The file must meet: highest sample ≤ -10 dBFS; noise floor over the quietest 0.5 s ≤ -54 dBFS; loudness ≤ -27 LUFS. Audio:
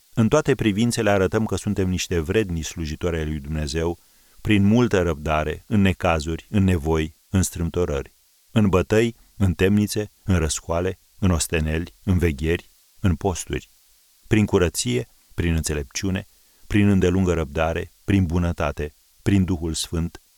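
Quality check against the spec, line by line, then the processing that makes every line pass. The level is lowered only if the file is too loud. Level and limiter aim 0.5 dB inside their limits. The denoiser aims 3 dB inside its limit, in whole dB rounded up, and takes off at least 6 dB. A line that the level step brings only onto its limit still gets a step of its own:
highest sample -5.0 dBFS: fail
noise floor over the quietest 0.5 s -57 dBFS: pass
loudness -22.5 LUFS: fail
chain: trim -5 dB; peak limiter -10.5 dBFS

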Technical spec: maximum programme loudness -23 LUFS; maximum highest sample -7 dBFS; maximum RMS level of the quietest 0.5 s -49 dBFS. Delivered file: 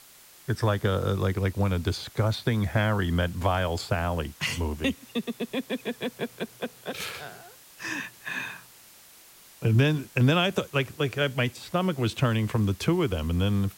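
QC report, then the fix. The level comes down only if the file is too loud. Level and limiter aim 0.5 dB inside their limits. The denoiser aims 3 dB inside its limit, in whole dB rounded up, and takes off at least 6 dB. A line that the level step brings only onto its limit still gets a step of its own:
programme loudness -27.5 LUFS: pass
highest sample -11.5 dBFS: pass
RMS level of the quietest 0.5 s -52 dBFS: pass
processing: none needed

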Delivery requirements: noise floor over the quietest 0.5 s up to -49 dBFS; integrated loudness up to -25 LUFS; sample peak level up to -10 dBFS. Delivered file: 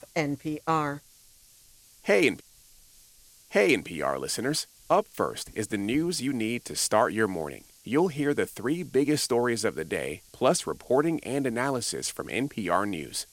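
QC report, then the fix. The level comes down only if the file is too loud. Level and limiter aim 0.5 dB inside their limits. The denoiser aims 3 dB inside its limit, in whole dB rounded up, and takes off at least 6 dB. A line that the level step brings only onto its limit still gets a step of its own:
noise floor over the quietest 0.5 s -57 dBFS: pass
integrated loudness -27.5 LUFS: pass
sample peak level -8.0 dBFS: fail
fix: peak limiter -10.5 dBFS

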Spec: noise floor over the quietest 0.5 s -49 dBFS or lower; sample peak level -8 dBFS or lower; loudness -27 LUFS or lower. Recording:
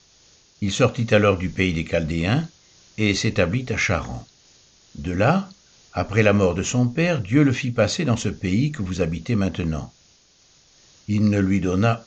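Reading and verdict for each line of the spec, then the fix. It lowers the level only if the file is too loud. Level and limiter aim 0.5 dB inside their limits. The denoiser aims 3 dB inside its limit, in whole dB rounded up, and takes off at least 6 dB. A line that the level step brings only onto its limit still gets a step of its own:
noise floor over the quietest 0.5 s -56 dBFS: pass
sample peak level -4.5 dBFS: fail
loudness -21.5 LUFS: fail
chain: trim -6 dB

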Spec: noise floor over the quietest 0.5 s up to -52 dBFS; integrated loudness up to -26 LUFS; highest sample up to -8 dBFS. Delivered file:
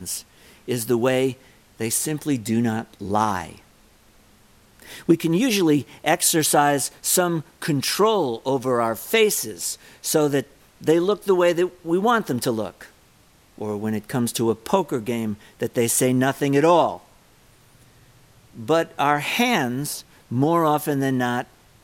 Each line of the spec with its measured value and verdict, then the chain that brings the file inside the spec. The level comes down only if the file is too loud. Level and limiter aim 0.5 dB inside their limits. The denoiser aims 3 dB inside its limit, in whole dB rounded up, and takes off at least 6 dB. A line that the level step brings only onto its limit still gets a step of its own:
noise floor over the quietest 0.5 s -55 dBFS: pass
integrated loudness -21.5 LUFS: fail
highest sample -4.0 dBFS: fail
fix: trim -5 dB

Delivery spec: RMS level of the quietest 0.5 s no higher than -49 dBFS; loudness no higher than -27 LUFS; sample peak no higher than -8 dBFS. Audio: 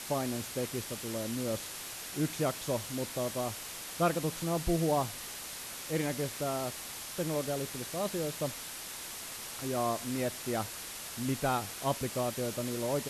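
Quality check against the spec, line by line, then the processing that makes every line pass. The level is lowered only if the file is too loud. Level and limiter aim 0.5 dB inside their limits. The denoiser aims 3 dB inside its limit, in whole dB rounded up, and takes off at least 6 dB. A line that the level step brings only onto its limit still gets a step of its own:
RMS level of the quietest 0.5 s -43 dBFS: fail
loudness -34.5 LUFS: pass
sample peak -15.5 dBFS: pass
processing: noise reduction 9 dB, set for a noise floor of -43 dBFS

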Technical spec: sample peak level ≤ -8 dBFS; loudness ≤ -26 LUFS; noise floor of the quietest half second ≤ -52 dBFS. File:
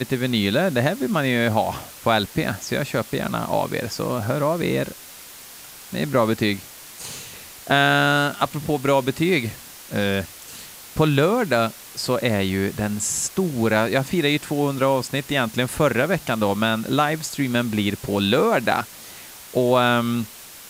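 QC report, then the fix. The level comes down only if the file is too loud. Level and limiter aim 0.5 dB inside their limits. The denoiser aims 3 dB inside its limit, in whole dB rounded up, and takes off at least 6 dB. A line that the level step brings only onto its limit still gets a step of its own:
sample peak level -5.0 dBFS: fail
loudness -21.5 LUFS: fail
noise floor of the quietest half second -41 dBFS: fail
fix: noise reduction 9 dB, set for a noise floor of -41 dBFS; trim -5 dB

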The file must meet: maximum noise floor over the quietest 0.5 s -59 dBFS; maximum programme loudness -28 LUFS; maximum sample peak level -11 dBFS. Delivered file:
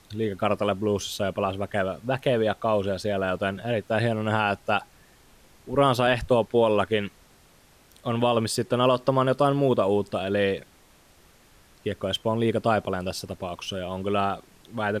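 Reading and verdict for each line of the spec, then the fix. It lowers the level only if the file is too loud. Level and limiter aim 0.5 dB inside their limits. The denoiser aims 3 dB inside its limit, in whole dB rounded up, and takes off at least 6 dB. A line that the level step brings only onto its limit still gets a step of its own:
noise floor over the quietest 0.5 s -56 dBFS: fail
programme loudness -25.5 LUFS: fail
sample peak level -9.5 dBFS: fail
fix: noise reduction 6 dB, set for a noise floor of -56 dBFS; trim -3 dB

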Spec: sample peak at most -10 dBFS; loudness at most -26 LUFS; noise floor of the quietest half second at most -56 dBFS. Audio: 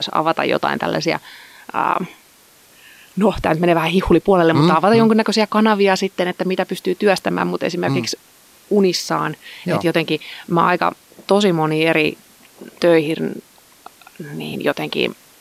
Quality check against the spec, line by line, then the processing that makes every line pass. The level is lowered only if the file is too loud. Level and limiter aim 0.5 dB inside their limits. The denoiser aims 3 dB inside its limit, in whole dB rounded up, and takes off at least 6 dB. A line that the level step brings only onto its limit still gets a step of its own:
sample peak -3.0 dBFS: fail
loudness -17.5 LUFS: fail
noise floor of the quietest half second -50 dBFS: fail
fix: trim -9 dB

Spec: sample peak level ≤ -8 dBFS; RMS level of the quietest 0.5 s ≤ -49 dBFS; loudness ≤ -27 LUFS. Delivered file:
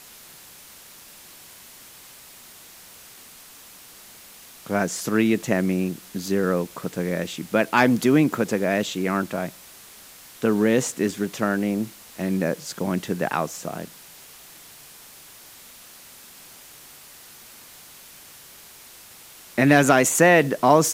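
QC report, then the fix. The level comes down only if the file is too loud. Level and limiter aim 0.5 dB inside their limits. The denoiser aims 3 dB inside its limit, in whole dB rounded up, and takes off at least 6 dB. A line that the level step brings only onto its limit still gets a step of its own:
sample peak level -3.5 dBFS: fail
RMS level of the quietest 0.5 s -46 dBFS: fail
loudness -22.0 LUFS: fail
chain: trim -5.5 dB

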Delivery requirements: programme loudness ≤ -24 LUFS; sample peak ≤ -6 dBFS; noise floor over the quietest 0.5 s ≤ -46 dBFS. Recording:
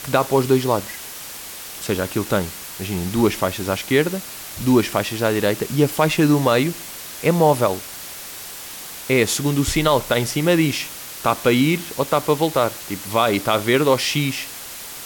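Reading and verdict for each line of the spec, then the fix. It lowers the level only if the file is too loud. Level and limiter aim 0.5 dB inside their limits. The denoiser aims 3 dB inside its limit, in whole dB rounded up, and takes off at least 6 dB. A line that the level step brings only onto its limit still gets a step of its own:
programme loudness -19.5 LUFS: fail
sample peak -4.0 dBFS: fail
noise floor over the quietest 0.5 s -35 dBFS: fail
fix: noise reduction 9 dB, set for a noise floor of -35 dBFS; trim -5 dB

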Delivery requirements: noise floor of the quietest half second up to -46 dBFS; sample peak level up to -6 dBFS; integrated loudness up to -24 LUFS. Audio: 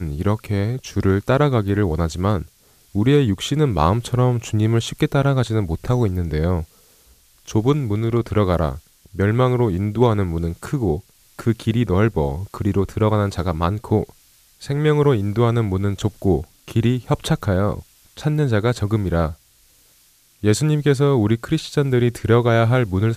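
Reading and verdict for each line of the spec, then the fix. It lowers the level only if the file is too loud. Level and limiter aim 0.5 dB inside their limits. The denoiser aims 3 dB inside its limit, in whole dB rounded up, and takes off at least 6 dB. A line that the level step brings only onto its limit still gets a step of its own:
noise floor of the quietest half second -55 dBFS: pass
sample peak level -3.0 dBFS: fail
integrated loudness -20.0 LUFS: fail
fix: trim -4.5 dB

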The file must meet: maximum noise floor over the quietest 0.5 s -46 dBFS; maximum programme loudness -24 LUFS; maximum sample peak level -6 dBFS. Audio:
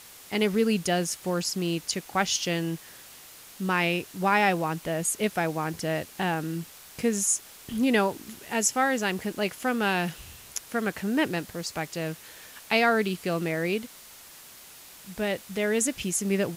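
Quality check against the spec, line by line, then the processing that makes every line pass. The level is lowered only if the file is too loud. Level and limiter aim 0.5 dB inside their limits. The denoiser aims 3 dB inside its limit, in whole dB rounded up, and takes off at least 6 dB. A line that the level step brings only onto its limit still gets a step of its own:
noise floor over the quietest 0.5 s -48 dBFS: pass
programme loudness -27.5 LUFS: pass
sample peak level -10.0 dBFS: pass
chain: none needed

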